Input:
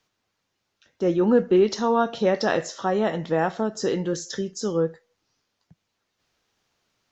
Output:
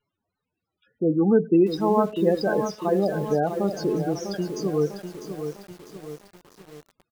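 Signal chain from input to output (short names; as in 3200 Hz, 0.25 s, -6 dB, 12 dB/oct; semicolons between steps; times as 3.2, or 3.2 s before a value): loudest bins only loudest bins 16; pitch shift -1.5 st; lo-fi delay 0.649 s, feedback 55%, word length 7-bit, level -8 dB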